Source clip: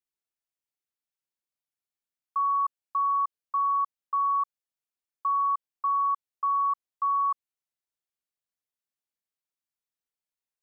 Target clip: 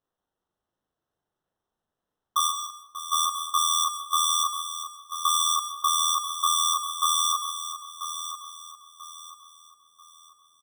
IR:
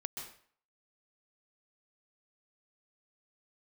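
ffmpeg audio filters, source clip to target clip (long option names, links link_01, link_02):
-filter_complex "[0:a]asplit=3[link_01][link_02][link_03];[link_01]afade=type=out:start_time=2.47:duration=0.02[link_04];[link_02]equalizer=frequency=1100:width_type=o:width=1.2:gain=-13,afade=type=in:start_time=2.47:duration=0.02,afade=type=out:start_time=3.11:duration=0.02[link_05];[link_03]afade=type=in:start_time=3.11:duration=0.02[link_06];[link_04][link_05][link_06]amix=inputs=3:normalize=0,acrusher=samples=19:mix=1:aa=0.000001,asplit=2[link_07][link_08];[link_08]adelay=38,volume=-2.5dB[link_09];[link_07][link_09]amix=inputs=2:normalize=0,aecho=1:1:989|1978|2967|3956:0.299|0.102|0.0345|0.0117,asplit=2[link_10][link_11];[1:a]atrim=start_sample=2205[link_12];[link_11][link_12]afir=irnorm=-1:irlink=0,volume=-2.5dB[link_13];[link_10][link_13]amix=inputs=2:normalize=0"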